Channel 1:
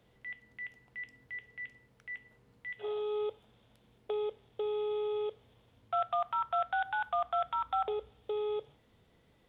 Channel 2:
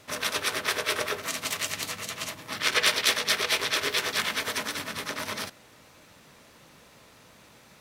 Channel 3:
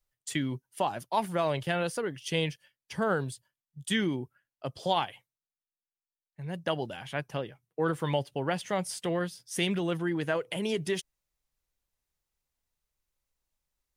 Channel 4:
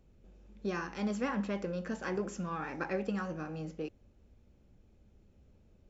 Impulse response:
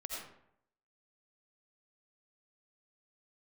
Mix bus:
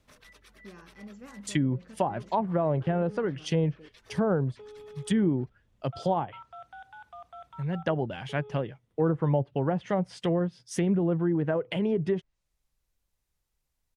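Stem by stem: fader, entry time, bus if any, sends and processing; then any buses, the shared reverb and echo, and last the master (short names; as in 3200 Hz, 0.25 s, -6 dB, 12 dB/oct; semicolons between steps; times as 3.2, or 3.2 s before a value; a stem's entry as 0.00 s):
-15.0 dB, 0.00 s, no send, dry
-19.0 dB, 0.00 s, no send, reverb removal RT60 1.1 s; compressor 6:1, threshold -36 dBFS, peak gain reduction 16.5 dB
+2.0 dB, 1.20 s, no send, low shelf 100 Hz -5 dB
-16.0 dB, 0.00 s, no send, dry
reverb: off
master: low shelf 190 Hz +10.5 dB; treble ducked by the level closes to 850 Hz, closed at -21.5 dBFS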